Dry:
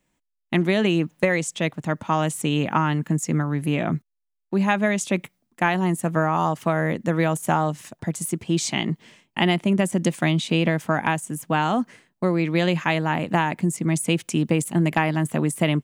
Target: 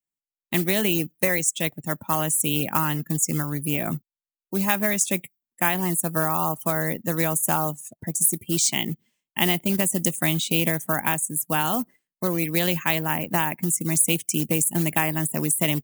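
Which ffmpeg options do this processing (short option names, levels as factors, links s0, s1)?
-af "acrusher=bits=4:mode=log:mix=0:aa=0.000001,aemphasis=mode=production:type=75fm,afftdn=nr=25:nf=-34,volume=0.668"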